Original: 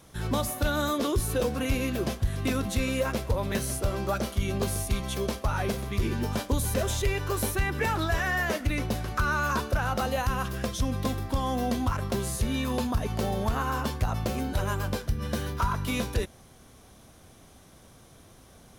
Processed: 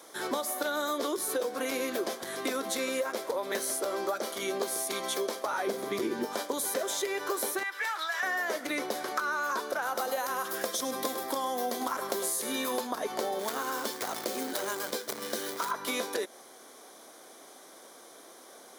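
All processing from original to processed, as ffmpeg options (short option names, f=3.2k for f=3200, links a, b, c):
-filter_complex "[0:a]asettb=1/sr,asplit=3[a][b][c];[a]atrim=end=5.674[d];[b]atrim=start=5.67:end=6.25,asetpts=PTS-STARTPTS,afade=t=in:d=0.004:c=qsin,afade=t=out:st=0.576:d=0.004:c=qsin,highpass=60,lowshelf=f=400:g=11.5[e];[c]atrim=start=6.246[f];[d][e]acrossfade=d=0.004:c1=hsin:c2=qsin[g];[g][f]acrossfade=d=0.004:c1=qsin:c2=hsin,asettb=1/sr,asplit=3[h][i][j];[h]atrim=end=7.634[k];[i]atrim=start=7.63:end=8.23,asetpts=PTS-STARTPTS,afade=t=in:d=0.004:c=qsin,afade=t=out:st=0.596:d=0.004:c=qsin,highpass=1.5k,highshelf=f=4.7k:g=-8[l];[j]atrim=start=8.226[m];[k][l]acrossfade=d=0.004:c1=hsin:c2=qsin[n];[n][m]acrossfade=d=0.004:c1=qsin:c2=hsin,asettb=1/sr,asplit=3[o][p][q];[o]atrim=end=9.824[r];[p]atrim=start=9.82:end=12.81,asetpts=PTS-STARTPTS,afade=t=in:d=0.004:c=qsin,afade=t=out:st=2.986:d=0.004:c=qsin,highshelf=f=9.2k:g=10,aecho=1:1:102:0.251,atrim=end_sample=131859[s];[q]atrim=start=12.806[t];[r][s]acrossfade=d=0.004:c1=hsin:c2=qsin[u];[u][t]acrossfade=d=0.004:c1=qsin:c2=hsin,asettb=1/sr,asplit=3[v][w][x];[v]atrim=end=13.394[y];[w]atrim=start=13.39:end=15.71,asetpts=PTS-STARTPTS,afade=t=in:d=0.004:c=qsin,afade=t=out:st=2.316:d=0.004:c=qsin,equalizer=f=950:t=o:w=2:g=-8,acrusher=bits=3:mode=log:mix=0:aa=0.000001[z];[x]atrim=start=15.706[aa];[y][z]acrossfade=d=0.004:c1=hsin:c2=qsin[ab];[ab][aa]acrossfade=d=0.004:c1=qsin:c2=hsin,highpass=f=330:w=0.5412,highpass=f=330:w=1.3066,equalizer=f=2.7k:t=o:w=0.22:g=-11.5,acompressor=threshold=-34dB:ratio=6,volume=5.5dB"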